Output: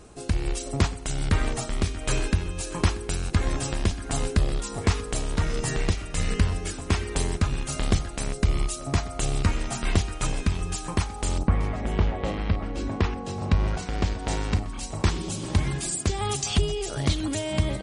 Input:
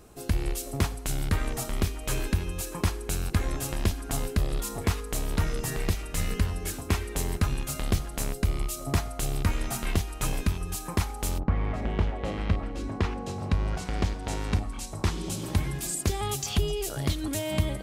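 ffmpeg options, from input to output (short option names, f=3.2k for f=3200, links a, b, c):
-af "aecho=1:1:635:0.141,tremolo=f=1.4:d=0.28,volume=4.5dB" -ar 44100 -c:a libmp3lame -b:a 40k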